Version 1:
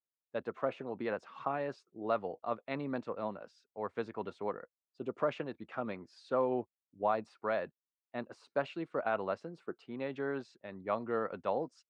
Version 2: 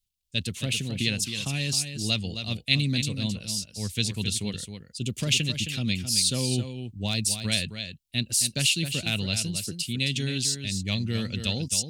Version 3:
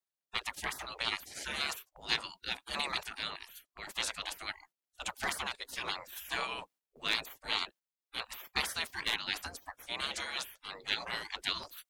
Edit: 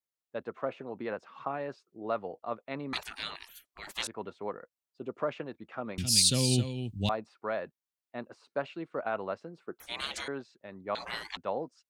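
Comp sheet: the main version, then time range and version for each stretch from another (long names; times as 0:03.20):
1
0:02.93–0:04.07: punch in from 3
0:05.98–0:07.09: punch in from 2
0:09.80–0:10.28: punch in from 3
0:10.95–0:11.37: punch in from 3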